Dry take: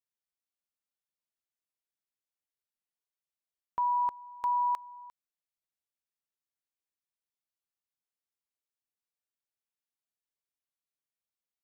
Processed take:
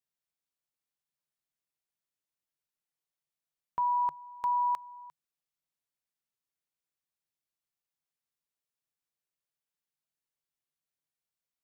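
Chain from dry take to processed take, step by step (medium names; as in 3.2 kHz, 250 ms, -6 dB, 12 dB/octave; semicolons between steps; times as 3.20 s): peaking EQ 150 Hz +9.5 dB 0.27 oct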